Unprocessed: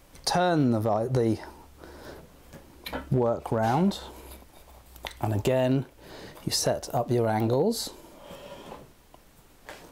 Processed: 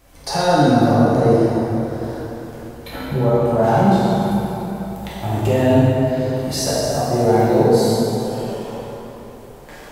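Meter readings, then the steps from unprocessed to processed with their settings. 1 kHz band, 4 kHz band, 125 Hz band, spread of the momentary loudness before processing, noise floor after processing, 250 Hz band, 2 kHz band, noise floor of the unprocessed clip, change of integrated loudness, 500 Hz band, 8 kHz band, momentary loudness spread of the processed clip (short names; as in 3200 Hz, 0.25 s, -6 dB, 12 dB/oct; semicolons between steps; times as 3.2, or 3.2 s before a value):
+10.5 dB, +6.0 dB, +10.5 dB, 21 LU, -39 dBFS, +11.5 dB, +9.0 dB, -56 dBFS, +9.0 dB, +11.0 dB, +6.5 dB, 17 LU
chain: harmonic-percussive split harmonic +5 dB; plate-style reverb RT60 3.7 s, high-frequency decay 0.6×, DRR -9 dB; gain -3 dB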